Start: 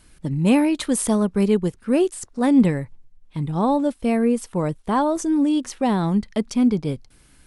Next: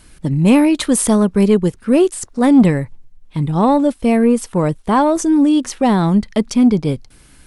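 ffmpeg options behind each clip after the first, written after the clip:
-af "acontrast=88"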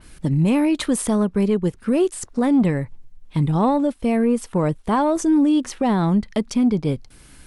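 -af "alimiter=limit=0.266:level=0:latency=1:release=422,adynamicequalizer=threshold=0.00708:dfrequency=3800:dqfactor=0.7:tfrequency=3800:tqfactor=0.7:attack=5:release=100:ratio=0.375:range=2.5:mode=cutabove:tftype=highshelf"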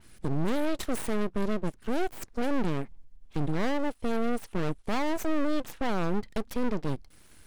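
-af "aeval=exprs='(tanh(10*val(0)+0.75)-tanh(0.75))/10':c=same,aeval=exprs='abs(val(0))':c=same,volume=0.708"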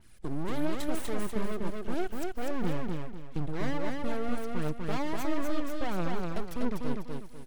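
-filter_complex "[0:a]aphaser=in_gain=1:out_gain=1:delay=3.5:decay=0.39:speed=1.5:type=triangular,asplit=2[s0][s1];[s1]aecho=0:1:246|492|738|984:0.708|0.227|0.0725|0.0232[s2];[s0][s2]amix=inputs=2:normalize=0,volume=0.531"

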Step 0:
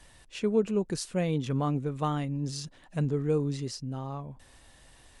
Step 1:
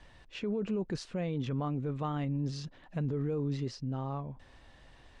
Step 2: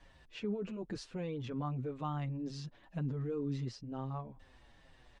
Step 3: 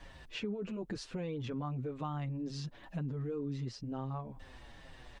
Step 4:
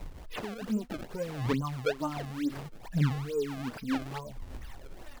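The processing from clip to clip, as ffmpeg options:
-af "lowpass=5200,aemphasis=mode=reproduction:type=cd,alimiter=level_in=1.26:limit=0.0631:level=0:latency=1:release=15,volume=0.794"
-filter_complex "[0:a]asplit=2[s0][s1];[s1]adelay=6.8,afreqshift=-2.1[s2];[s0][s2]amix=inputs=2:normalize=1,volume=0.841"
-af "acompressor=threshold=0.00398:ratio=2.5,volume=2.66"
-filter_complex "[0:a]aphaser=in_gain=1:out_gain=1:delay=4.7:decay=0.74:speed=0.66:type=triangular,acrusher=samples=27:mix=1:aa=0.000001:lfo=1:lforange=43.2:lforate=2.3,acrossover=split=4700[s0][s1];[s1]acompressor=threshold=0.00251:ratio=4:attack=1:release=60[s2];[s0][s2]amix=inputs=2:normalize=0,volume=1.19"

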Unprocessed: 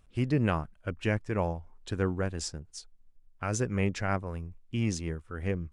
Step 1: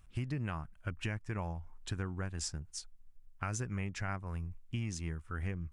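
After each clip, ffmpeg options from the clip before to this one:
-af "equalizer=f=250:t=o:w=1:g=-4,equalizer=f=500:t=o:w=1:g=-10,equalizer=f=4000:t=o:w=1:g=-4,acompressor=threshold=0.0158:ratio=6,volume=1.33"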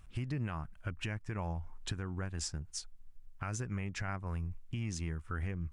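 -af "highshelf=f=7600:g=-4,alimiter=level_in=2.37:limit=0.0631:level=0:latency=1:release=241,volume=0.422,volume=1.68"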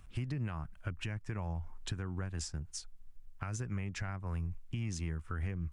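-filter_complex "[0:a]acrossover=split=160[s0][s1];[s1]acompressor=threshold=0.01:ratio=6[s2];[s0][s2]amix=inputs=2:normalize=0,volume=1.12"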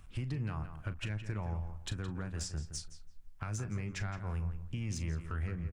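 -filter_complex "[0:a]asoftclip=type=tanh:threshold=0.0398,asplit=2[s0][s1];[s1]adelay=38,volume=0.224[s2];[s0][s2]amix=inputs=2:normalize=0,asplit=2[s3][s4];[s4]adelay=168,lowpass=f=3400:p=1,volume=0.335,asplit=2[s5][s6];[s6]adelay=168,lowpass=f=3400:p=1,volume=0.23,asplit=2[s7][s8];[s8]adelay=168,lowpass=f=3400:p=1,volume=0.23[s9];[s3][s5][s7][s9]amix=inputs=4:normalize=0,volume=1.12"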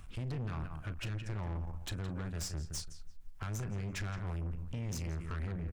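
-af "aeval=exprs='(tanh(100*val(0)+0.3)-tanh(0.3))/100':c=same,volume=1.78"

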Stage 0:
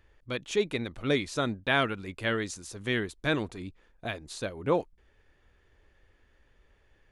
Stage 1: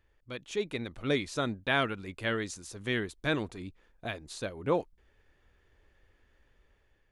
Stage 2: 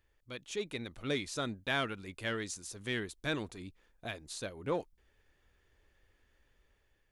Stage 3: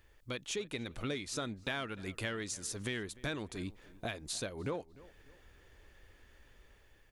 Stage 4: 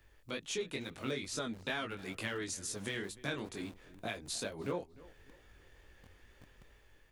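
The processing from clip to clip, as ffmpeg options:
-af "dynaudnorm=f=280:g=5:m=1.88,volume=0.422"
-filter_complex "[0:a]highshelf=f=3800:g=7.5,asplit=2[s0][s1];[s1]asoftclip=type=tanh:threshold=0.0531,volume=0.562[s2];[s0][s2]amix=inputs=2:normalize=0,volume=0.376"
-filter_complex "[0:a]acompressor=threshold=0.00501:ratio=5,asplit=2[s0][s1];[s1]adelay=299,lowpass=f=2400:p=1,volume=0.1,asplit=2[s2][s3];[s3]adelay=299,lowpass=f=2400:p=1,volume=0.41,asplit=2[s4][s5];[s5]adelay=299,lowpass=f=2400:p=1,volume=0.41[s6];[s0][s2][s4][s6]amix=inputs=4:normalize=0,volume=2.99"
-filter_complex "[0:a]flanger=delay=18.5:depth=4.2:speed=2.2,acrossover=split=110|1000|5400[s0][s1][s2][s3];[s0]aeval=exprs='(mod(562*val(0)+1,2)-1)/562':c=same[s4];[s4][s1][s2][s3]amix=inputs=4:normalize=0,volume=1.41"

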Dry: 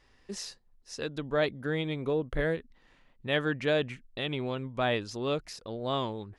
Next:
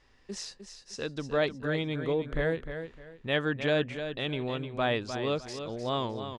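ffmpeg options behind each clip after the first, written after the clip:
-af "lowpass=f=9100:w=0.5412,lowpass=f=9100:w=1.3066,aecho=1:1:305|610|915:0.355|0.0958|0.0259"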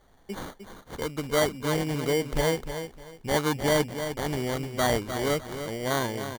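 -af "acrusher=samples=17:mix=1:aa=0.000001,volume=1.5"

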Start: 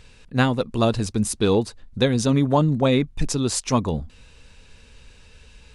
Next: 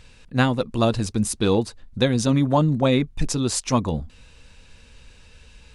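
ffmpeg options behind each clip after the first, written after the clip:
-af "bandreject=f=420:w=12"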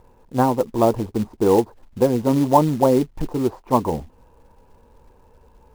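-af "lowpass=f=910:t=q:w=4.1,equalizer=f=380:t=o:w=1.1:g=9.5,acrusher=bits=5:mode=log:mix=0:aa=0.000001,volume=0.596"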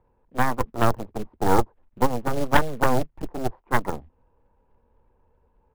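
-filter_complex "[0:a]aeval=exprs='0.891*(cos(1*acos(clip(val(0)/0.891,-1,1)))-cos(1*PI/2))+0.316*(cos(2*acos(clip(val(0)/0.891,-1,1)))-cos(2*PI/2))+0.2*(cos(3*acos(clip(val(0)/0.891,-1,1)))-cos(3*PI/2))+0.141*(cos(6*acos(clip(val(0)/0.891,-1,1)))-cos(6*PI/2))':c=same,acrossover=split=110|3000[s0][s1][s2];[s0]asplit=2[s3][s4];[s4]adelay=26,volume=0.562[s5];[s3][s5]amix=inputs=2:normalize=0[s6];[s2]aeval=exprs='sgn(val(0))*max(abs(val(0))-0.00299,0)':c=same[s7];[s6][s1][s7]amix=inputs=3:normalize=0,volume=0.708"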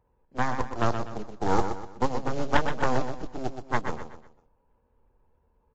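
-af "aecho=1:1:124|248|372|496:0.398|0.151|0.0575|0.0218,volume=0.562" -ar 16000 -c:a libvorbis -b:a 32k

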